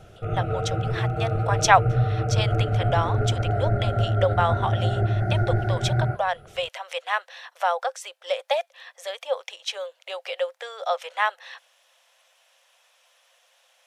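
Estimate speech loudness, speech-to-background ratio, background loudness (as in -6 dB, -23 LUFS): -28.0 LUFS, -3.5 dB, -24.5 LUFS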